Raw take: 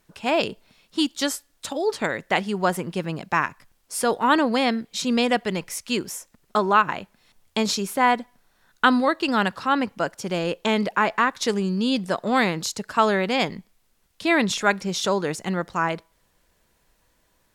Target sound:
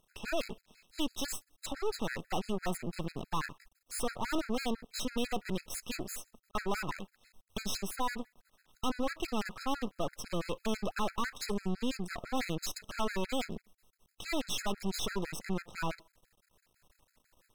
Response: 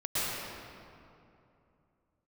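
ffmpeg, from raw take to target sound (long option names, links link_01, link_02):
-af "aeval=exprs='(tanh(11.2*val(0)+0.65)-tanh(0.65))/11.2':channel_layout=same,aeval=exprs='max(val(0),0)':channel_layout=same,afftfilt=real='re*gt(sin(2*PI*6*pts/sr)*(1-2*mod(floor(b*sr/1024/1300),2)),0)':imag='im*gt(sin(2*PI*6*pts/sr)*(1-2*mod(floor(b*sr/1024/1300),2)),0)':win_size=1024:overlap=0.75,volume=5.5dB"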